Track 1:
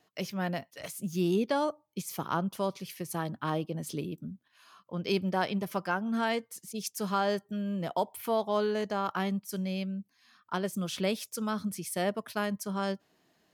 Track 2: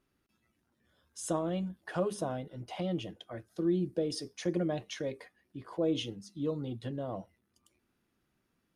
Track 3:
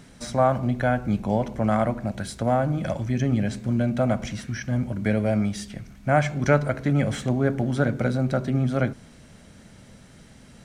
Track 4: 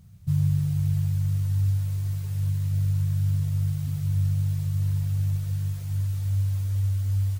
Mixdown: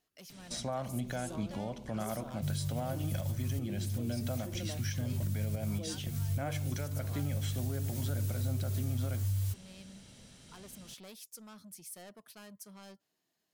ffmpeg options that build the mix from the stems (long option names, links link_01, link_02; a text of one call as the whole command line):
ffmpeg -i stem1.wav -i stem2.wav -i stem3.wav -i stem4.wav -filter_complex "[0:a]asoftclip=type=tanh:threshold=-31.5dB,volume=-16.5dB[link_01];[1:a]highshelf=frequency=4400:gain=11.5,volume=-12dB,asplit=2[link_02][link_03];[2:a]highshelf=frequency=2400:width_type=q:width=1.5:gain=6.5,alimiter=limit=-14.5dB:level=0:latency=1:release=402,adelay=300,volume=-8dB[link_04];[3:a]adelay=2150,volume=2dB[link_05];[link_03]apad=whole_len=420807[link_06];[link_05][link_06]sidechaincompress=threshold=-58dB:ratio=10:attack=22:release=184[link_07];[link_02][link_04]amix=inputs=2:normalize=0,alimiter=level_in=2.5dB:limit=-24dB:level=0:latency=1:release=268,volume=-2.5dB,volume=0dB[link_08];[link_01][link_07]amix=inputs=2:normalize=0,highshelf=frequency=4100:gain=12,acompressor=threshold=-32dB:ratio=3,volume=0dB[link_09];[link_08][link_09]amix=inputs=2:normalize=0,alimiter=level_in=1.5dB:limit=-24dB:level=0:latency=1:release=141,volume=-1.5dB" out.wav